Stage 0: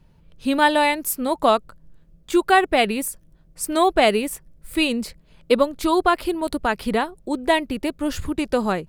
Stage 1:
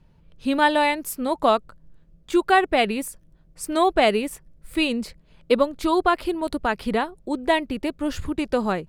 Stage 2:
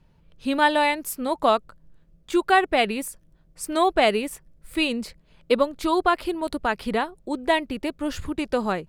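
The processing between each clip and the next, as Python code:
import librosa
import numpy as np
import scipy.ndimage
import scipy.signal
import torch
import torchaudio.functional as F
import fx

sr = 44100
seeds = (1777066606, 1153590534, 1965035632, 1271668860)

y1 = fx.high_shelf(x, sr, hz=8000.0, db=-8.0)
y1 = F.gain(torch.from_numpy(y1), -1.5).numpy()
y2 = fx.low_shelf(y1, sr, hz=450.0, db=-3.0)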